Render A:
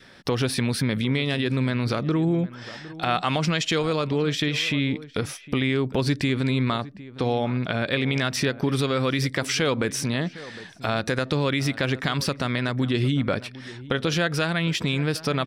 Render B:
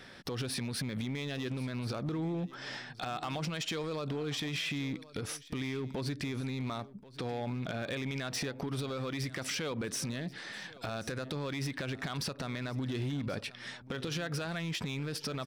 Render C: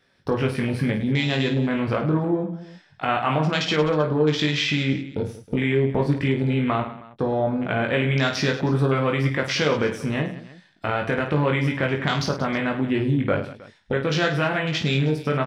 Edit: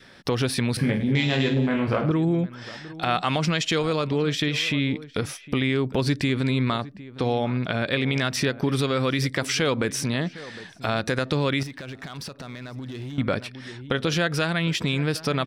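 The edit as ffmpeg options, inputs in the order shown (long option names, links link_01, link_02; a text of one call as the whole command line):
ffmpeg -i take0.wav -i take1.wav -i take2.wav -filter_complex "[0:a]asplit=3[link_01][link_02][link_03];[link_01]atrim=end=0.772[link_04];[2:a]atrim=start=0.768:end=2.112[link_05];[link_02]atrim=start=2.108:end=11.632[link_06];[1:a]atrim=start=11.628:end=13.182[link_07];[link_03]atrim=start=13.178[link_08];[link_04][link_05]acrossfade=duration=0.004:curve1=hsin:curve2=hsin[link_09];[link_09][link_06]acrossfade=duration=0.004:curve1=hsin:curve2=hsin[link_10];[link_10][link_07]acrossfade=duration=0.004:curve1=hsin:curve2=hsin[link_11];[link_11][link_08]acrossfade=duration=0.004:curve1=hsin:curve2=hsin" out.wav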